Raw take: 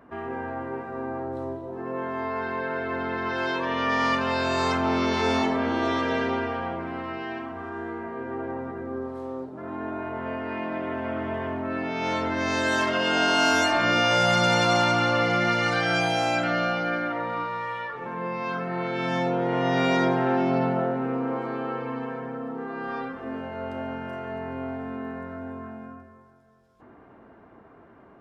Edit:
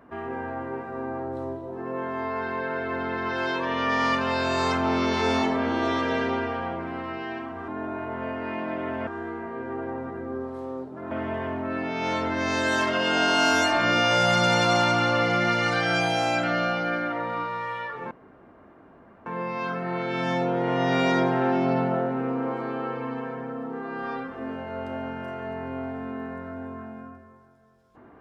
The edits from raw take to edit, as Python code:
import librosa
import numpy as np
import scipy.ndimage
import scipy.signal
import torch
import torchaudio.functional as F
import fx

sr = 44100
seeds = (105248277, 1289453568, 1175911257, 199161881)

y = fx.edit(x, sr, fx.move(start_s=9.72, length_s=1.39, to_s=7.68),
    fx.insert_room_tone(at_s=18.11, length_s=1.15), tone=tone)